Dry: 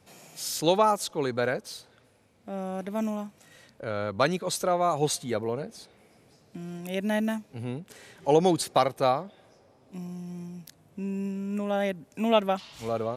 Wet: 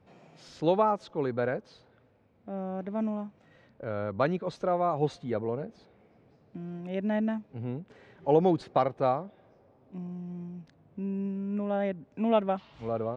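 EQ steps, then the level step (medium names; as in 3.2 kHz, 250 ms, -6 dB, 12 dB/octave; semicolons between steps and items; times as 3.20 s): tape spacing loss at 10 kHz 36 dB; 0.0 dB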